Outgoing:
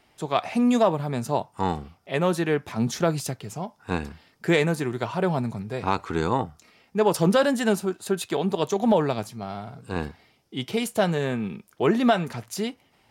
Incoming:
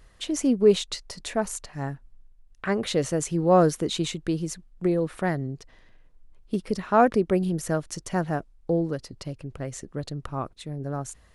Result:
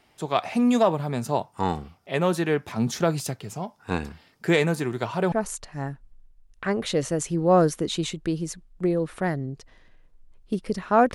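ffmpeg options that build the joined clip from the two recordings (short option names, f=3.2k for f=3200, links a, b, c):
-filter_complex "[0:a]apad=whole_dur=11.14,atrim=end=11.14,atrim=end=5.322[a];[1:a]atrim=start=1.328:end=7.15[b];[a][b]acrossfade=d=0.004:c1=hsin:c2=hsin"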